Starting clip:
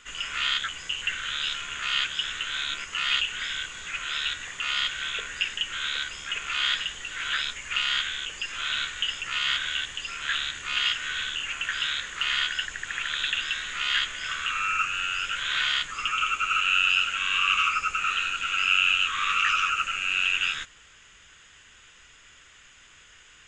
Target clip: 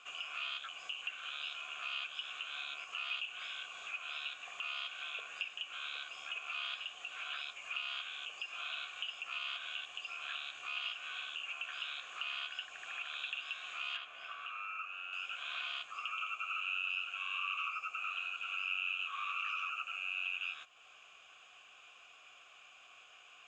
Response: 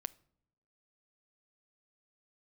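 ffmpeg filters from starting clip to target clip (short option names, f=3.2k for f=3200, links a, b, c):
-filter_complex "[0:a]asplit=3[a][b][c];[a]bandpass=f=730:t=q:w=8,volume=0dB[d];[b]bandpass=f=1.09k:t=q:w=8,volume=-6dB[e];[c]bandpass=f=2.44k:t=q:w=8,volume=-9dB[f];[d][e][f]amix=inputs=3:normalize=0,acompressor=threshold=-56dB:ratio=2,asetnsamples=n=441:p=0,asendcmd='13.97 highshelf g -4.5;15.13 highshelf g 8.5',highshelf=f=3.8k:g=9.5,volume=7.5dB"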